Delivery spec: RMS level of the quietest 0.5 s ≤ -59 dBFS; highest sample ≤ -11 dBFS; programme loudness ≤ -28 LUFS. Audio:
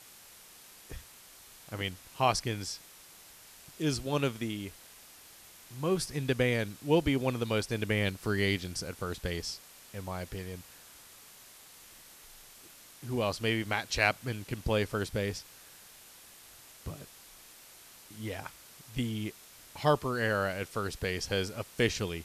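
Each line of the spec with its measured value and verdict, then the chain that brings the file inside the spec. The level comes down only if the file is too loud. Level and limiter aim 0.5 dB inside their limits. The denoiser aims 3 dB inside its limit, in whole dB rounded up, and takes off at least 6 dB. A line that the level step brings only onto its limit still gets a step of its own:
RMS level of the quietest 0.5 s -54 dBFS: fail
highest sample -12.5 dBFS: pass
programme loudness -32.5 LUFS: pass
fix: noise reduction 8 dB, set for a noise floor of -54 dBFS

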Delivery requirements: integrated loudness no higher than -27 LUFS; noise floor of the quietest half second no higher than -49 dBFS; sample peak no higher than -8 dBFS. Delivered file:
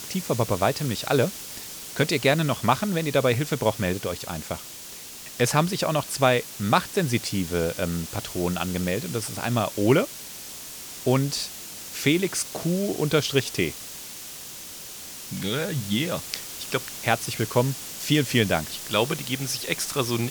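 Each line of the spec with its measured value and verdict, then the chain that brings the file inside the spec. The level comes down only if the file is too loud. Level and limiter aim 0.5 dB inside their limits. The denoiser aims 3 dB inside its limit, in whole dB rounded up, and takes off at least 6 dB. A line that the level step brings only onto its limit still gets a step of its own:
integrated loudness -25.0 LUFS: fail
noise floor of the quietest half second -40 dBFS: fail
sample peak -4.5 dBFS: fail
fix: noise reduction 10 dB, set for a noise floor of -40 dBFS; trim -2.5 dB; peak limiter -8.5 dBFS

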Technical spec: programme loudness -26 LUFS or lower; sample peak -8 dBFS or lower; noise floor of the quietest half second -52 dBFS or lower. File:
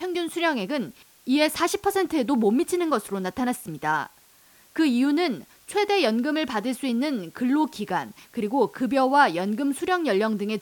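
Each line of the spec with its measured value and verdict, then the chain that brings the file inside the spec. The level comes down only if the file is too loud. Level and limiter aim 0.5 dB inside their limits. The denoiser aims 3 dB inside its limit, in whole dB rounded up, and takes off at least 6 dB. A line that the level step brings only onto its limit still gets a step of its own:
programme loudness -24.5 LUFS: fail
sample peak -7.0 dBFS: fail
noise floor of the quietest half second -56 dBFS: pass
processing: trim -2 dB

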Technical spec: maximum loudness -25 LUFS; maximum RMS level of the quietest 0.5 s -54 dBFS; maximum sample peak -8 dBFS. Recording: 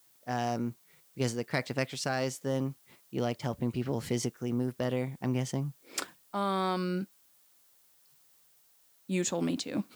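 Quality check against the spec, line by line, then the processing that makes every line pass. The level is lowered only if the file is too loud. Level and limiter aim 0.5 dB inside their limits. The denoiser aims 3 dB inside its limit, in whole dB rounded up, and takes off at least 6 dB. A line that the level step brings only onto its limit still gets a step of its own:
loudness -33.5 LUFS: pass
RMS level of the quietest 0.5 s -65 dBFS: pass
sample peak -14.0 dBFS: pass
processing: none needed

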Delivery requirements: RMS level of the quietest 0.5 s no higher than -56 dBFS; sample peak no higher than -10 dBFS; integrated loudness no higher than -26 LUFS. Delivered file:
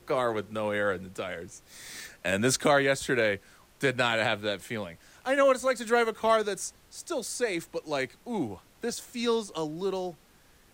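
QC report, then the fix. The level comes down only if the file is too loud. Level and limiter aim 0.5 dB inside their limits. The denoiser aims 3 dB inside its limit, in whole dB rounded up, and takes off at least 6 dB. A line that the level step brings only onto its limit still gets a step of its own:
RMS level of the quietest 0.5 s -59 dBFS: pass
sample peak -12.5 dBFS: pass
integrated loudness -29.0 LUFS: pass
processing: none needed

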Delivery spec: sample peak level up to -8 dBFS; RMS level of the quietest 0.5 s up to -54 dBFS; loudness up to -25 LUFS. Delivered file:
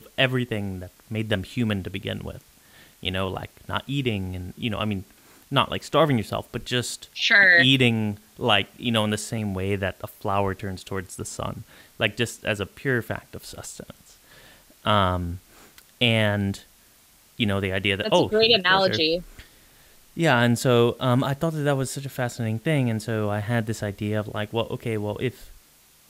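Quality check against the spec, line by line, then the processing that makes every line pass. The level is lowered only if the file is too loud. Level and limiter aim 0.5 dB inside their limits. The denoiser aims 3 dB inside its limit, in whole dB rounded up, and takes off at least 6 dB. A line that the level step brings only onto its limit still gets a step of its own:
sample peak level -6.0 dBFS: fail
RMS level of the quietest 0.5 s -56 dBFS: pass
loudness -23.5 LUFS: fail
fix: trim -2 dB; peak limiter -8.5 dBFS

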